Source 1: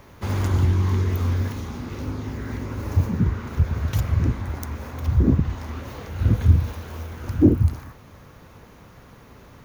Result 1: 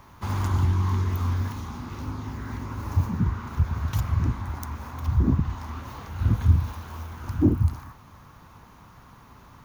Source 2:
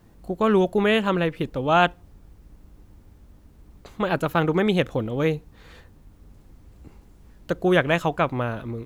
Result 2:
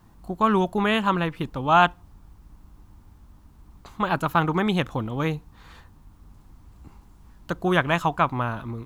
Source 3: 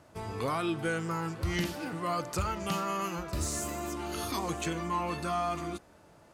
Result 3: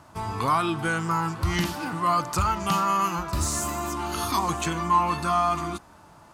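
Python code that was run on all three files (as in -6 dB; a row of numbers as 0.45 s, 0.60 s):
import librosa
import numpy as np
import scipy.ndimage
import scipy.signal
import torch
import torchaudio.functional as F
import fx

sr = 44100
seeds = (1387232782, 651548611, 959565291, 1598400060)

y = fx.graphic_eq(x, sr, hz=(500, 1000, 2000), db=(-9, 8, -3))
y = y * 10.0 ** (-26 / 20.0) / np.sqrt(np.mean(np.square(y)))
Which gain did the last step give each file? -3.0 dB, 0.0 dB, +7.0 dB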